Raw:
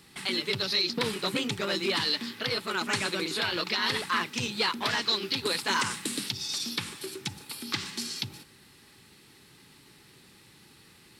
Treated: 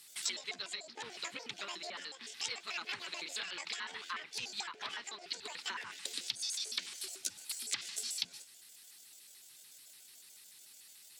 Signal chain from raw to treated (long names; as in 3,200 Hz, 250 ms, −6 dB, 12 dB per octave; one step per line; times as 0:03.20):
pitch shifter gated in a rhythm +10 semitones, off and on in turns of 73 ms
treble cut that deepens with the level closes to 1,400 Hz, closed at −24.5 dBFS
first-order pre-emphasis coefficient 0.97
level +4 dB